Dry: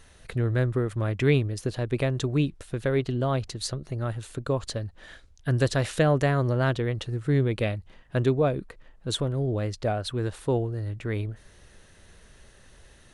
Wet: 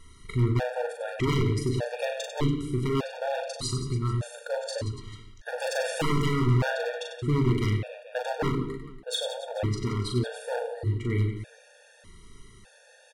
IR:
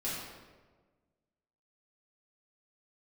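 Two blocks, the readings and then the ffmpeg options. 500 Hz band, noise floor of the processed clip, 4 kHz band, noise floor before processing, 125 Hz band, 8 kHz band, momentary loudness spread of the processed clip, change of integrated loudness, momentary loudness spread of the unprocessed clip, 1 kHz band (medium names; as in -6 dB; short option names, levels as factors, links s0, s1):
-3.0 dB, -56 dBFS, +1.0 dB, -55 dBFS, -1.5 dB, +0.5 dB, 9 LU, -2.0 dB, 9 LU, 0.0 dB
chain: -filter_complex "[0:a]asoftclip=type=tanh:threshold=0.266,aecho=1:1:40|96|174.4|284.2|437.8:0.631|0.398|0.251|0.158|0.1,aeval=exprs='0.106*(abs(mod(val(0)/0.106+3,4)-2)-1)':c=same,asplit=2[s0][s1];[1:a]atrim=start_sample=2205,afade=t=out:st=0.25:d=0.01,atrim=end_sample=11466[s2];[s1][s2]afir=irnorm=-1:irlink=0,volume=0.282[s3];[s0][s3]amix=inputs=2:normalize=0,afftfilt=real='re*gt(sin(2*PI*0.83*pts/sr)*(1-2*mod(floor(b*sr/1024/470),2)),0)':imag='im*gt(sin(2*PI*0.83*pts/sr)*(1-2*mod(floor(b*sr/1024/470),2)),0)':win_size=1024:overlap=0.75"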